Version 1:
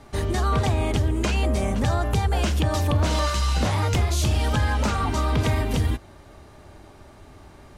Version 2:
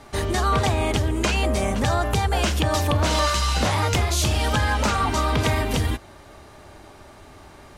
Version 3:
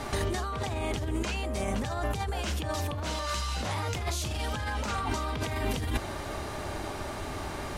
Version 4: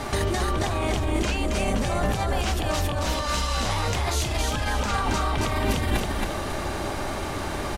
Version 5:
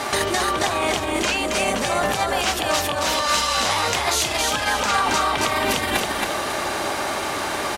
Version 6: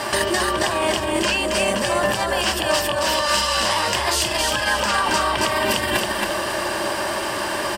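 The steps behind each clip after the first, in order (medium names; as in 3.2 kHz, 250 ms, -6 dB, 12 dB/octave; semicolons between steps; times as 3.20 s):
bass shelf 370 Hz -6.5 dB; trim +5 dB
compressor with a negative ratio -31 dBFS, ratio -1
frequency-shifting echo 272 ms, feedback 35%, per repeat -31 Hz, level -3.5 dB; trim +5 dB
high-pass 650 Hz 6 dB/octave; trim +8.5 dB
rippled EQ curve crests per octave 1.3, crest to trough 8 dB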